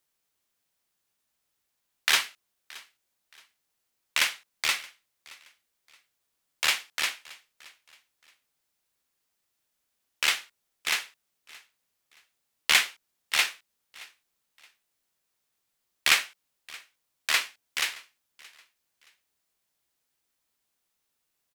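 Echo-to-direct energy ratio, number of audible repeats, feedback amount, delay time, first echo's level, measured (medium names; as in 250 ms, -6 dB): -22.0 dB, 2, 31%, 623 ms, -22.5 dB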